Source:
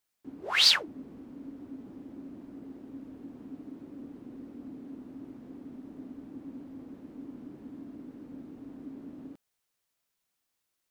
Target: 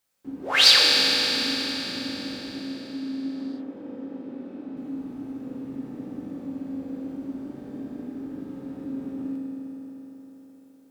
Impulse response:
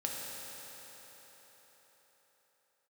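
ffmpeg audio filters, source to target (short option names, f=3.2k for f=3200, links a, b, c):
-filter_complex "[0:a]asettb=1/sr,asplit=3[a][b][c];[a]atrim=end=2.584[d];[b]atrim=start=2.58:end=4.77,asetpts=PTS-STARTPTS,afade=t=in:d=0.004:c=qsin,afade=t=out:st=2.186:d=0.004:c=qsin,acrossover=split=170 4800:gain=0.2 1 0.2[e][f][g];[e][f][g]amix=inputs=3:normalize=0[h];[c]atrim=start=4.766[i];[d][h]acrossfade=d=0.004:c1=hsin:c2=qsin[j];[j][i]acrossfade=d=0.004:c1=qsin:c2=hsin[k];[1:a]atrim=start_sample=2205,asetrate=42777,aresample=44100[l];[k][l]afir=irnorm=-1:irlink=0,volume=5.5dB"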